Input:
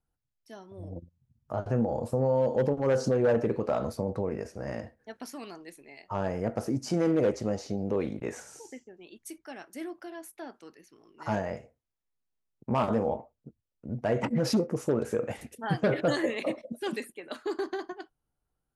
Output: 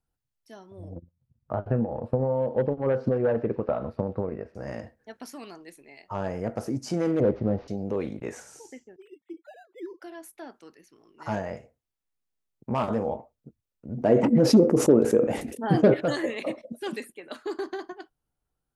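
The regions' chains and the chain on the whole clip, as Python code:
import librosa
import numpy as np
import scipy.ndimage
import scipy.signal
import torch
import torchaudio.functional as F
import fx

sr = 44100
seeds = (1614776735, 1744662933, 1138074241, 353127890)

y = fx.chain(x, sr, fx.air_absorb(metres=420.0),
    fx.transient(attack_db=6, sustain_db=-3),
    fx.echo_wet_highpass(ms=125, feedback_pct=74, hz=3300.0, wet_db=-13.5), at=(0.95, 4.55))
y = fx.chain(y, sr, fx.cvsd(bps=32000),
    fx.lowpass(hz=1500.0, slope=12),
    fx.low_shelf(hz=350.0, db=8.5), at=(7.2, 7.68))
y = fx.chain(y, sr, fx.sine_speech(),
    fx.air_absorb(metres=320.0),
    fx.resample_linear(factor=8), at=(8.96, 10.02))
y = fx.chain(y, sr, fx.curve_eq(hz=(100.0, 290.0, 1500.0), db=(0, 12, -1)),
    fx.sustainer(db_per_s=98.0), at=(13.97, 15.94))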